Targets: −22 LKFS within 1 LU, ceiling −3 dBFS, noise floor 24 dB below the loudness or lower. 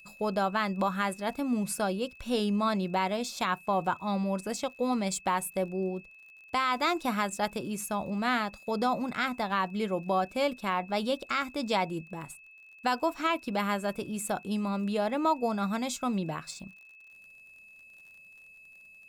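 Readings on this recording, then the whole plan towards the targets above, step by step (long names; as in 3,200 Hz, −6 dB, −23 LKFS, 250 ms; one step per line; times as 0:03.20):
crackle rate 46 per second; interfering tone 2,600 Hz; level of the tone −51 dBFS; integrated loudness −30.5 LKFS; sample peak −16.5 dBFS; target loudness −22.0 LKFS
→ click removal
notch filter 2,600 Hz, Q 30
level +8.5 dB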